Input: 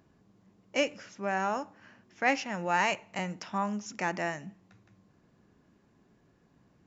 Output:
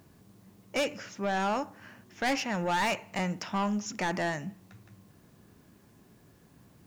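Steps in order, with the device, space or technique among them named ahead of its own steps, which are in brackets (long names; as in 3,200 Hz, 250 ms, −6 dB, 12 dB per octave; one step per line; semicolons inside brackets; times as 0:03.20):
open-reel tape (soft clipping −29 dBFS, distortion −7 dB; parametric band 98 Hz +4.5 dB 1 octave; white noise bed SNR 36 dB)
level +5 dB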